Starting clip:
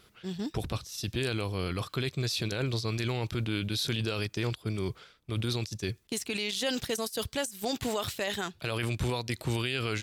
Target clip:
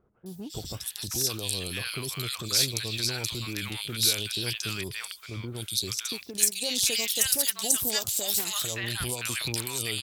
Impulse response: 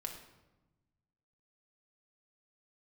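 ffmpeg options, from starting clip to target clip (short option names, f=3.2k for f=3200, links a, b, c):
-filter_complex "[0:a]crystalizer=i=8.5:c=0,acrossover=split=920|3100[a][b][c];[c]adelay=260[d];[b]adelay=570[e];[a][e][d]amix=inputs=3:normalize=0,aeval=exprs='1*(cos(1*acos(clip(val(0)/1,-1,1)))-cos(1*PI/2))+0.0355*(cos(2*acos(clip(val(0)/1,-1,1)))-cos(2*PI/2))':c=same,volume=-5dB"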